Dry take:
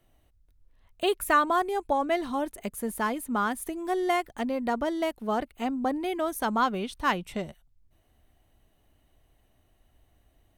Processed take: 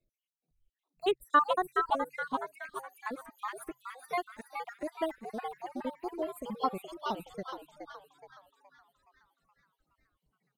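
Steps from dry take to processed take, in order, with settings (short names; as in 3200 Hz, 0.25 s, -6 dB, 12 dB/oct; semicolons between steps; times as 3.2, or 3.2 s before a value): random spectral dropouts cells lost 69%; 1.05–1.46 high shelf 11000 Hz -10 dB; on a send: frequency-shifting echo 0.421 s, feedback 56%, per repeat +130 Hz, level -4.5 dB; on the sum: upward expander 1.5:1, over -46 dBFS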